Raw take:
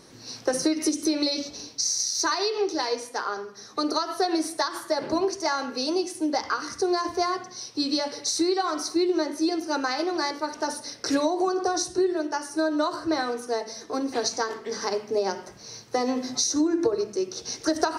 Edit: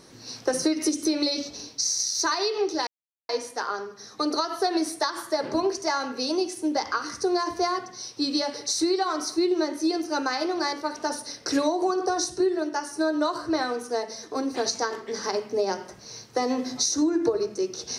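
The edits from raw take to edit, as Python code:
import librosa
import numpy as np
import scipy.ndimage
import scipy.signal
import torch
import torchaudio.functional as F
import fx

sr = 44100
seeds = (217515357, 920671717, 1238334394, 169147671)

y = fx.edit(x, sr, fx.insert_silence(at_s=2.87, length_s=0.42), tone=tone)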